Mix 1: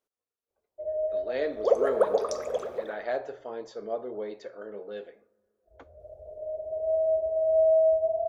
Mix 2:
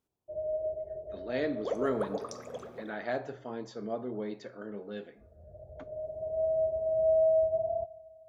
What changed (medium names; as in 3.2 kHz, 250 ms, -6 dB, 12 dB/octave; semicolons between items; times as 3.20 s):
first sound: entry -0.50 s; second sound -7.0 dB; master: add graphic EQ 125/250/500 Hz +11/+7/-7 dB